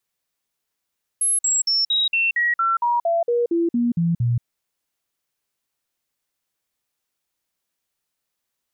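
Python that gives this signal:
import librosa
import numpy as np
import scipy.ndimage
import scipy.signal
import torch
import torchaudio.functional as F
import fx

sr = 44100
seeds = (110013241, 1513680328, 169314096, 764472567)

y = fx.stepped_sweep(sr, from_hz=10800.0, direction='down', per_octave=2, tones=14, dwell_s=0.18, gap_s=0.05, level_db=-16.5)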